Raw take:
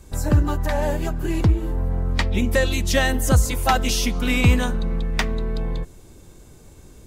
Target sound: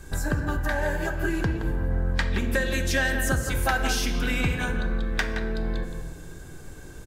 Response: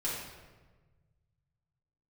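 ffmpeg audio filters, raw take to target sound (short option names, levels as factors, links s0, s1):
-filter_complex "[0:a]acompressor=threshold=0.0562:ratio=6,equalizer=f=1600:t=o:w=0.21:g=14.5,asplit=2[s0][s1];[s1]adelay=170,highpass=300,lowpass=3400,asoftclip=type=hard:threshold=0.119,volume=0.447[s2];[s0][s2]amix=inputs=2:normalize=0,asplit=2[s3][s4];[1:a]atrim=start_sample=2205[s5];[s4][s5]afir=irnorm=-1:irlink=0,volume=0.335[s6];[s3][s6]amix=inputs=2:normalize=0"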